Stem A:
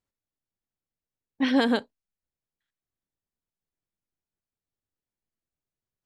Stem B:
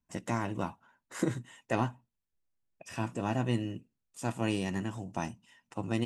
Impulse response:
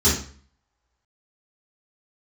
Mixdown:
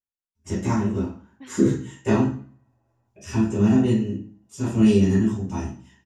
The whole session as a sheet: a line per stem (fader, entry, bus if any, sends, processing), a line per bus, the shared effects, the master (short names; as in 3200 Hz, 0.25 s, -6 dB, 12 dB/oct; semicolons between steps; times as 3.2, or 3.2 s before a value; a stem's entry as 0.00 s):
-16.0 dB, 0.00 s, no send, ending taper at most 120 dB/s
-0.5 dB, 0.35 s, send -7.5 dB, tremolo 0.65 Hz, depth 37%; rotary speaker horn 5 Hz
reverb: on, RT60 0.45 s, pre-delay 3 ms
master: dry